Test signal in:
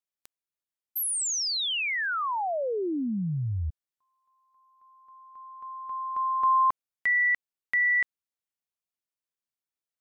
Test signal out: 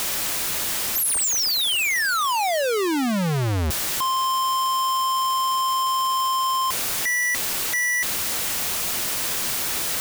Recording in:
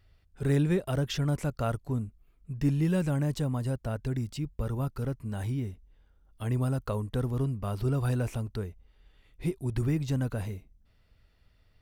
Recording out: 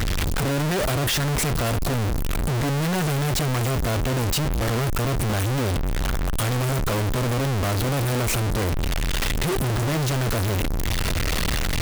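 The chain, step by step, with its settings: one-bit comparator; trim +8.5 dB

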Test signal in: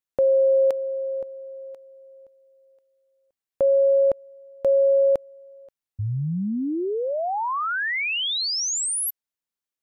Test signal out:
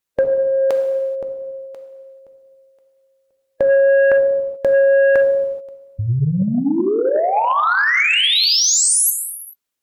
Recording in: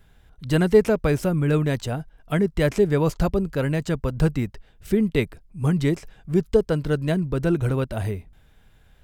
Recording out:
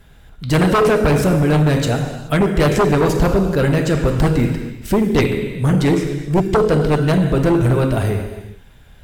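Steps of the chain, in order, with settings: gated-style reverb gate 460 ms falling, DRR 3 dB; sine folder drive 9 dB, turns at -4.5 dBFS; harmonic-percussive split percussive +3 dB; trim -6 dB

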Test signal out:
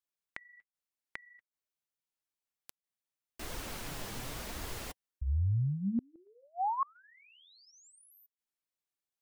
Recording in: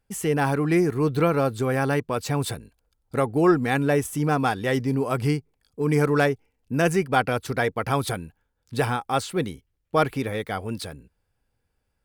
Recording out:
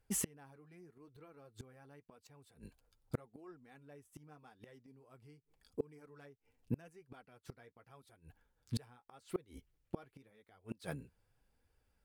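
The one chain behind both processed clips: flange 0.85 Hz, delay 1.8 ms, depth 7.5 ms, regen -34%; inverted gate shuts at -25 dBFS, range -34 dB; trim +1 dB

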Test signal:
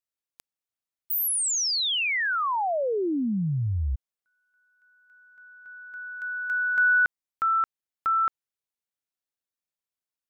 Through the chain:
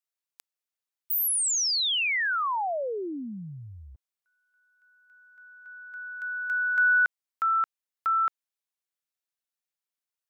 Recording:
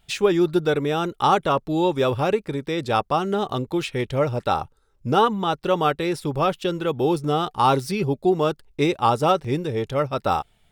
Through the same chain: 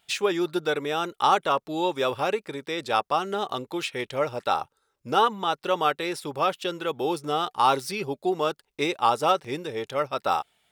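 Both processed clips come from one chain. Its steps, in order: high-pass 690 Hz 6 dB/octave

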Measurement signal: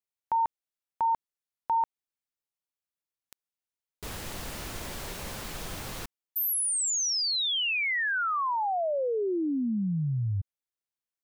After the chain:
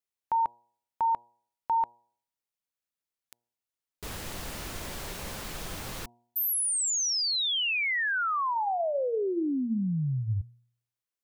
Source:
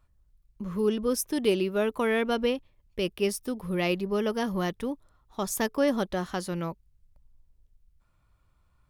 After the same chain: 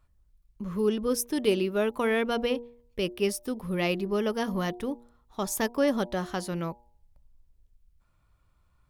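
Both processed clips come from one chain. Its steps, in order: de-hum 119.2 Hz, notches 8

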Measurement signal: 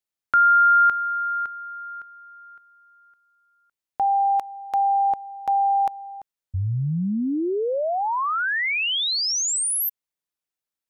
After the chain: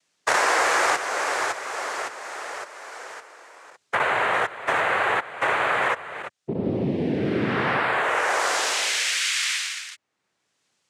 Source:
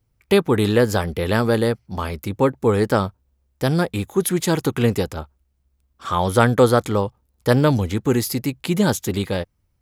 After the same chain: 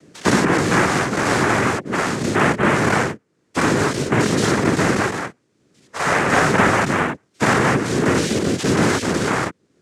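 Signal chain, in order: every event in the spectrogram widened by 120 ms; noise-vocoded speech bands 3; three bands compressed up and down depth 70%; trim -3 dB

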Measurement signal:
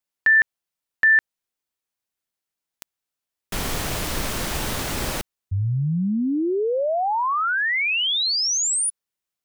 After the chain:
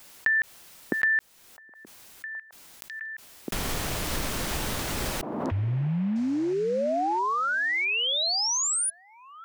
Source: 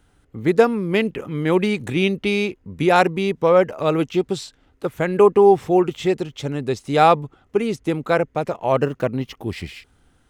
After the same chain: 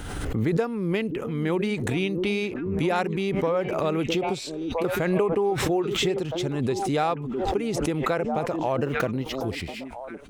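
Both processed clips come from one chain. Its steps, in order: compression 4:1, threshold -18 dBFS; on a send: repeats whose band climbs or falls 659 ms, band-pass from 280 Hz, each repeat 1.4 oct, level -8 dB; on the sum: swell ahead of each attack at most 31 dB/s; trim -4 dB

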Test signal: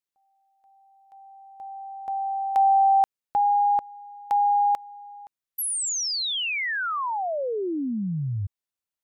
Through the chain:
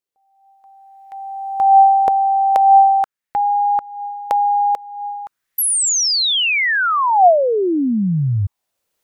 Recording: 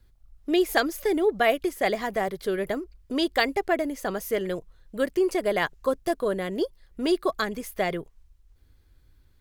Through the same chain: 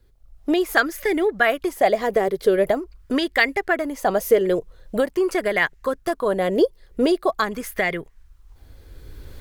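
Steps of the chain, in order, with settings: recorder AGC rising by 14 dB/s; sweeping bell 0.44 Hz 430–2000 Hz +10 dB

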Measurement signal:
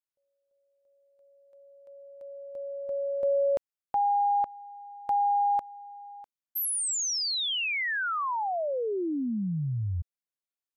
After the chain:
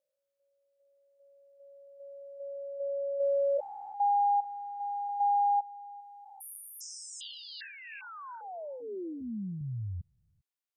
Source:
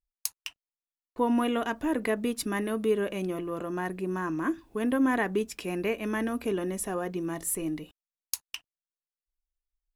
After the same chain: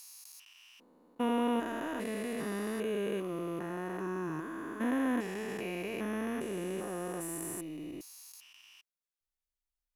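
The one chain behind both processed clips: spectrogram pixelated in time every 400 ms; bass shelf 370 Hz -5.5 dB

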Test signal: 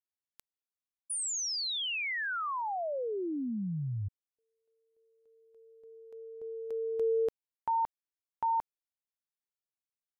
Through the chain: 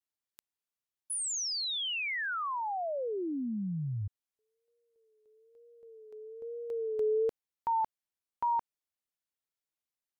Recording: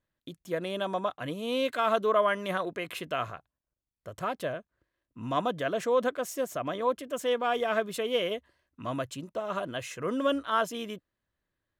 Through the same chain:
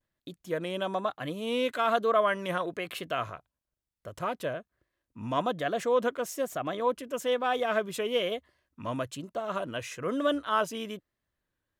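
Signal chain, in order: vibrato 1.1 Hz 80 cents

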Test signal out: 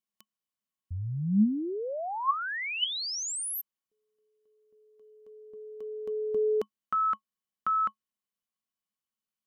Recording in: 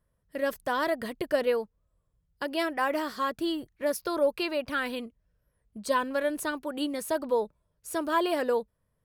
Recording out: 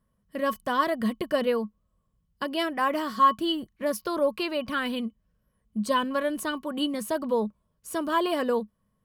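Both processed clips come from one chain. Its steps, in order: small resonant body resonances 210/1100/3000 Hz, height 15 dB, ringing for 90 ms

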